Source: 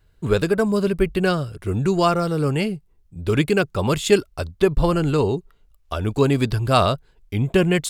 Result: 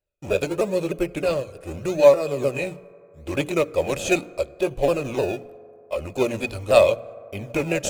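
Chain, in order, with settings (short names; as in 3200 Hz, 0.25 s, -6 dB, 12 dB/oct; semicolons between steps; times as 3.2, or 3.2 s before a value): repeated pitch sweeps -4 st, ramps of 0.305 s; gate -47 dBFS, range -18 dB; tone controls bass -6 dB, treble +9 dB; notches 60/120/180/240/300 Hz; in parallel at -6 dB: decimation with a swept rate 28×, swing 100% 0.8 Hz; on the sum: small resonant body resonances 570/2500 Hz, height 18 dB, ringing for 35 ms; on a send at -19 dB: reverb RT60 2.9 s, pre-delay 3 ms; on the sum: gain -8.5 dB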